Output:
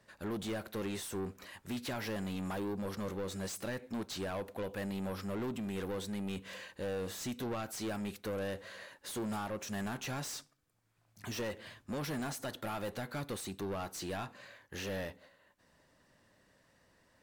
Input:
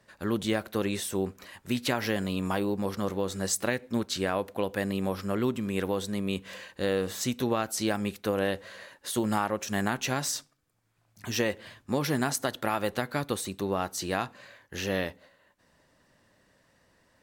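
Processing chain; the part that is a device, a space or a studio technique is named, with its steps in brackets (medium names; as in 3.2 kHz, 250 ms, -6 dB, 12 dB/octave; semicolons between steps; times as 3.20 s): saturation between pre-emphasis and de-emphasis (treble shelf 3.5 kHz +8.5 dB; saturation -30.5 dBFS, distortion -6 dB; treble shelf 3.5 kHz -8.5 dB); trim -3 dB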